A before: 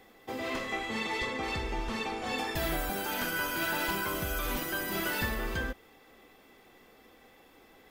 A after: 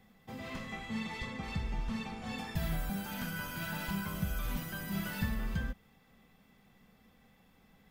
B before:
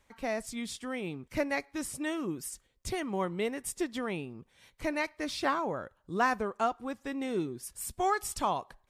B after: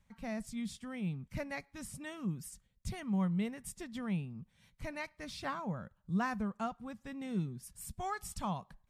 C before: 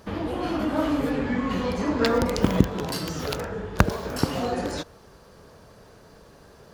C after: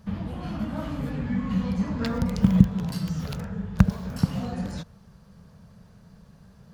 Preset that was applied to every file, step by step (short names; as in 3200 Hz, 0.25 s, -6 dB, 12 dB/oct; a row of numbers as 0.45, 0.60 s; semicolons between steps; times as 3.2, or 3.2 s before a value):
resonant low shelf 250 Hz +9 dB, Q 3; gain -8.5 dB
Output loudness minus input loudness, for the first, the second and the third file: -5.5, -5.5, -0.5 LU